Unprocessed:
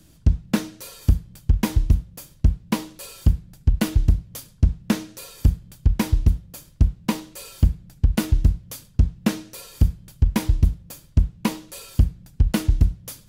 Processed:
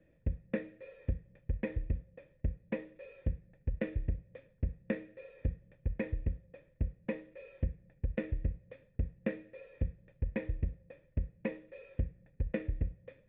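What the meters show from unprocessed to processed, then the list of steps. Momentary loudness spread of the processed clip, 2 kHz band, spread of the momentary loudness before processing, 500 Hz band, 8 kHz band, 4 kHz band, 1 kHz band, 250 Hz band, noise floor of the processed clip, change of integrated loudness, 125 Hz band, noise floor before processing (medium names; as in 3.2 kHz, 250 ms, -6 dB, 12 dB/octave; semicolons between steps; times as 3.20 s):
10 LU, -10.5 dB, 9 LU, -5.0 dB, under -40 dB, under -25 dB, -22.0 dB, -15.0 dB, -68 dBFS, -16.0 dB, -16.5 dB, -52 dBFS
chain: cascade formant filter e; dynamic bell 810 Hz, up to -6 dB, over -57 dBFS, Q 1.2; trim +3.5 dB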